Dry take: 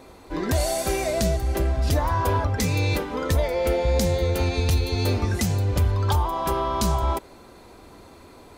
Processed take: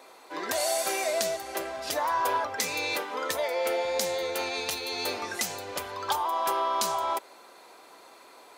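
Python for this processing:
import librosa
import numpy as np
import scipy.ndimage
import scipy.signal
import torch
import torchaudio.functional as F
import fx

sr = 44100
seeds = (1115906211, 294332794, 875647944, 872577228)

y = scipy.signal.sosfilt(scipy.signal.butter(2, 620.0, 'highpass', fs=sr, output='sos'), x)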